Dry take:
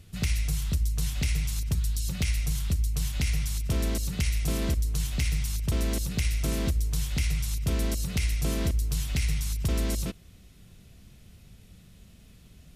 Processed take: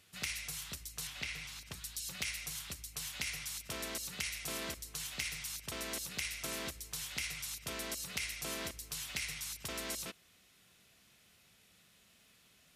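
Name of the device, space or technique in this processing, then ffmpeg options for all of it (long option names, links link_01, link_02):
filter by subtraction: -filter_complex "[0:a]asplit=2[link_01][link_02];[link_02]lowpass=1400,volume=-1[link_03];[link_01][link_03]amix=inputs=2:normalize=0,asettb=1/sr,asplit=3[link_04][link_05][link_06];[link_04]atrim=end=1.074[link_07];[link_05]atrim=start=1.07:end=1.74,asetpts=PTS-STARTPTS,afade=type=in:duration=0.004:curve=qsin,afade=type=out:start_time=0.666:duration=0.004:curve=qsin,acrossover=split=4800[link_08][link_09];[link_09]acompressor=threshold=-49dB:ratio=4:attack=1:release=60[link_10];[link_08][link_10]amix=inputs=2:normalize=0[link_11];[link_06]atrim=start=1.736[link_12];[link_07][link_11]acrossfade=duration=0.004:curve1=hsin:curve2=qsin[link_13];[link_13][link_12]acrossfade=duration=0.004:curve1=qsin:curve2=hsin,volume=-4dB"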